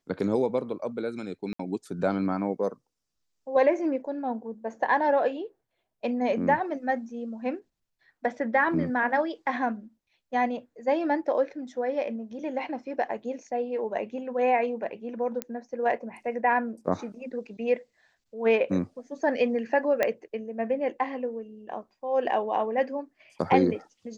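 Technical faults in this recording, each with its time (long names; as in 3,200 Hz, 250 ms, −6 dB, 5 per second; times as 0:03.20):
0:01.53–0:01.59: drop-out 64 ms
0:15.42: click −15 dBFS
0:20.03: click −11 dBFS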